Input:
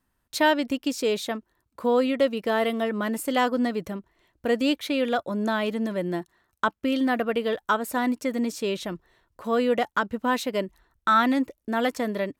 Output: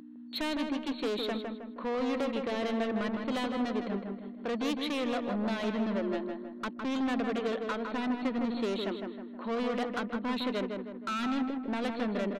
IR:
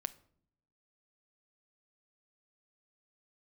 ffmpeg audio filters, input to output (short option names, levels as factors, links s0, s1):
-filter_complex "[0:a]acrossover=split=400|3000[s0][s1][s2];[s1]acompressor=threshold=0.0398:ratio=6[s3];[s0][s3][s2]amix=inputs=3:normalize=0,aeval=exprs='val(0)+0.0158*(sin(2*PI*60*n/s)+sin(2*PI*2*60*n/s)/2+sin(2*PI*3*60*n/s)/3+sin(2*PI*4*60*n/s)/4+sin(2*PI*5*60*n/s)/5)':c=same,afftfilt=real='re*between(b*sr/4096,190,4400)':imag='im*between(b*sr/4096,190,4400)':win_size=4096:overlap=0.75,asoftclip=type=tanh:threshold=0.0335,asplit=2[s4][s5];[s5]adelay=158,lowpass=f=2100:p=1,volume=0.631,asplit=2[s6][s7];[s7]adelay=158,lowpass=f=2100:p=1,volume=0.48,asplit=2[s8][s9];[s9]adelay=158,lowpass=f=2100:p=1,volume=0.48,asplit=2[s10][s11];[s11]adelay=158,lowpass=f=2100:p=1,volume=0.48,asplit=2[s12][s13];[s13]adelay=158,lowpass=f=2100:p=1,volume=0.48,asplit=2[s14][s15];[s15]adelay=158,lowpass=f=2100:p=1,volume=0.48[s16];[s4][s6][s8][s10][s12][s14][s16]amix=inputs=7:normalize=0"